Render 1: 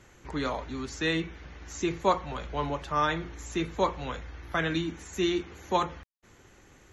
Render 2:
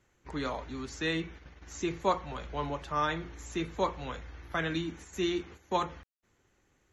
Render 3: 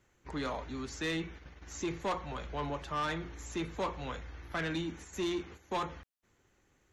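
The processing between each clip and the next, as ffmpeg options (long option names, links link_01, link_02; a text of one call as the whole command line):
ffmpeg -i in.wav -af "agate=range=-11dB:threshold=-44dB:ratio=16:detection=peak,volume=-3.5dB" out.wav
ffmpeg -i in.wav -af "asoftclip=type=tanh:threshold=-28.5dB" out.wav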